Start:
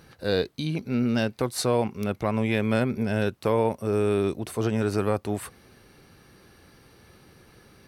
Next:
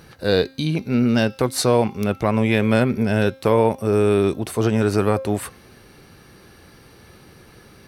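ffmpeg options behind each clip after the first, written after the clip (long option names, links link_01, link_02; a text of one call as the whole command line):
ffmpeg -i in.wav -af "bandreject=frequency=266.2:width_type=h:width=4,bandreject=frequency=532.4:width_type=h:width=4,bandreject=frequency=798.6:width_type=h:width=4,bandreject=frequency=1064.8:width_type=h:width=4,bandreject=frequency=1331:width_type=h:width=4,bandreject=frequency=1597.2:width_type=h:width=4,bandreject=frequency=1863.4:width_type=h:width=4,bandreject=frequency=2129.6:width_type=h:width=4,bandreject=frequency=2395.8:width_type=h:width=4,bandreject=frequency=2662:width_type=h:width=4,bandreject=frequency=2928.2:width_type=h:width=4,bandreject=frequency=3194.4:width_type=h:width=4,bandreject=frequency=3460.6:width_type=h:width=4,bandreject=frequency=3726.8:width_type=h:width=4,bandreject=frequency=3993:width_type=h:width=4,bandreject=frequency=4259.2:width_type=h:width=4,bandreject=frequency=4525.4:width_type=h:width=4,bandreject=frequency=4791.6:width_type=h:width=4,bandreject=frequency=5057.8:width_type=h:width=4,bandreject=frequency=5324:width_type=h:width=4,bandreject=frequency=5590.2:width_type=h:width=4,bandreject=frequency=5856.4:width_type=h:width=4,bandreject=frequency=6122.6:width_type=h:width=4,bandreject=frequency=6388.8:width_type=h:width=4,volume=6.5dB" out.wav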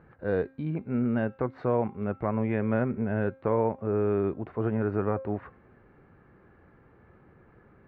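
ffmpeg -i in.wav -af "lowpass=frequency=1800:width=0.5412,lowpass=frequency=1800:width=1.3066,volume=-9dB" out.wav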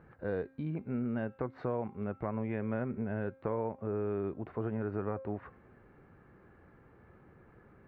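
ffmpeg -i in.wav -af "acompressor=threshold=-33dB:ratio=2,volume=-2dB" out.wav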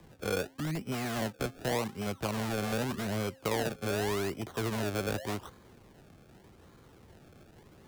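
ffmpeg -i in.wav -filter_complex "[0:a]acrusher=samples=31:mix=1:aa=0.000001:lfo=1:lforange=31:lforate=0.85,acrossover=split=170|270|1400[link_01][link_02][link_03][link_04];[link_02]aeval=exprs='(mod(94.4*val(0)+1,2)-1)/94.4':channel_layout=same[link_05];[link_01][link_05][link_03][link_04]amix=inputs=4:normalize=0,volume=3dB" out.wav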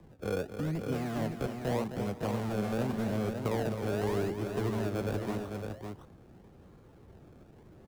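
ffmpeg -i in.wav -filter_complex "[0:a]tiltshelf=frequency=1200:gain=5.5,asplit=2[link_01][link_02];[link_02]aecho=0:1:262|407|558:0.355|0.112|0.501[link_03];[link_01][link_03]amix=inputs=2:normalize=0,volume=-4.5dB" out.wav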